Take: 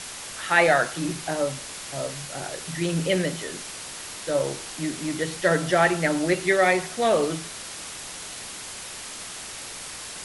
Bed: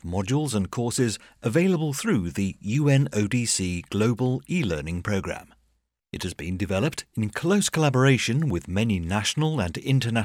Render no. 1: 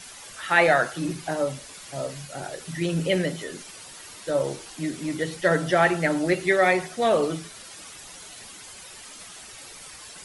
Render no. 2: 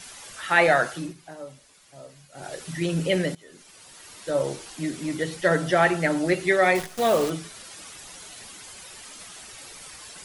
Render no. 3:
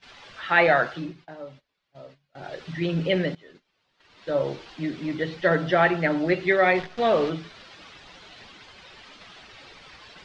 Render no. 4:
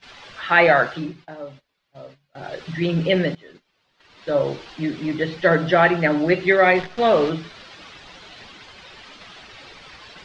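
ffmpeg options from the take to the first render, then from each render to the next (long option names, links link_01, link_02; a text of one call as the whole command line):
ffmpeg -i in.wav -af "afftdn=noise_reduction=10:noise_floor=-38" out.wav
ffmpeg -i in.wav -filter_complex "[0:a]asettb=1/sr,asplit=3[link_01][link_02][link_03];[link_01]atrim=end=6.754[link_04];[link_02]atrim=start=6.75:end=7.3,asetpts=PTS-STARTPTS,afade=type=in:duration=0.004:curve=qsin,afade=type=out:start_time=0.546:duration=0.004:curve=qsin,acrusher=bits=6:dc=4:mix=0:aa=0.000001[link_05];[link_03]atrim=start=7.296[link_06];[link_04][link_05]acrossfade=duration=0.004:curve1=hsin:curve2=qsin[link_07];[link_07][link_06]acrossfade=duration=0.004:curve1=qsin:curve2=hsin,asplit=4[link_08][link_09][link_10][link_11];[link_08]atrim=end=1.14,asetpts=PTS-STARTPTS,afade=type=out:start_time=0.93:duration=0.21:silence=0.211349[link_12];[link_09]atrim=start=1.14:end=2.32,asetpts=PTS-STARTPTS,volume=-13.5dB[link_13];[link_10]atrim=start=2.32:end=3.35,asetpts=PTS-STARTPTS,afade=type=in:duration=0.21:silence=0.211349,afade=type=out:start_time=1.026:duration=0.004:curve=hsin:silence=0.1[link_14];[link_11]atrim=start=3.35,asetpts=PTS-STARTPTS,afade=type=in:duration=1.06:silence=0.1[link_15];[link_12][link_13][link_14][link_15]concat=n=4:v=0:a=1" out.wav
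ffmpeg -i in.wav -af "lowpass=frequency=4200:width=0.5412,lowpass=frequency=4200:width=1.3066,agate=range=-19dB:threshold=-48dB:ratio=16:detection=peak" out.wav
ffmpeg -i in.wav -af "volume=4.5dB,alimiter=limit=-3dB:level=0:latency=1" out.wav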